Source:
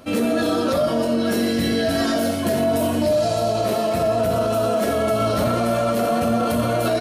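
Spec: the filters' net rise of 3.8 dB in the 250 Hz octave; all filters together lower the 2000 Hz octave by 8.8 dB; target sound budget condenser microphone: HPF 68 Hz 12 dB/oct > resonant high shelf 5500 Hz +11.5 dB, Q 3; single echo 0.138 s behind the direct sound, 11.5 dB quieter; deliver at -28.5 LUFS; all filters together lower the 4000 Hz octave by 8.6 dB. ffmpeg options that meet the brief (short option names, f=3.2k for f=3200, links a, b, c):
-af "highpass=68,equalizer=f=250:t=o:g=4.5,equalizer=f=2k:t=o:g=-9,equalizer=f=4k:t=o:g=-6.5,highshelf=f=5.5k:t=q:w=3:g=11.5,aecho=1:1:138:0.266,volume=-10.5dB"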